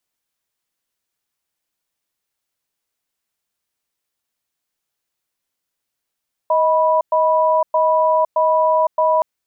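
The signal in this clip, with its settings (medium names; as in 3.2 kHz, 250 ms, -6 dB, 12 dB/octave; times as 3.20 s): cadence 630 Hz, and 982 Hz, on 0.51 s, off 0.11 s, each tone -15 dBFS 2.72 s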